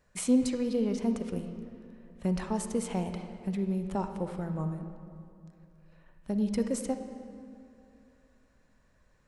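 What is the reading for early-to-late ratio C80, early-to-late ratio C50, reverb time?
8.5 dB, 7.5 dB, 2.6 s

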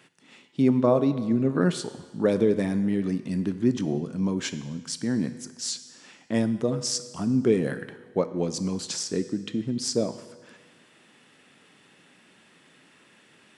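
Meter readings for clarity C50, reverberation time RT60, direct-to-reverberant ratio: 13.0 dB, 1.4 s, 11.0 dB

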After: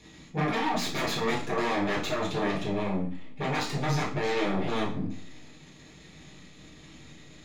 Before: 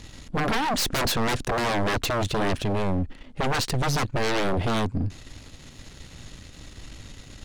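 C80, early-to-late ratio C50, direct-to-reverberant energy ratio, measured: 11.5 dB, 6.5 dB, -6.5 dB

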